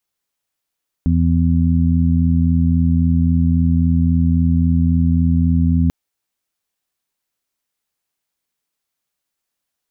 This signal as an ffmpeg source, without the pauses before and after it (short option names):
-f lavfi -i "aevalsrc='0.188*sin(2*PI*83.7*t)+0.15*sin(2*PI*167.4*t)+0.126*sin(2*PI*251.1*t)':d=4.84:s=44100"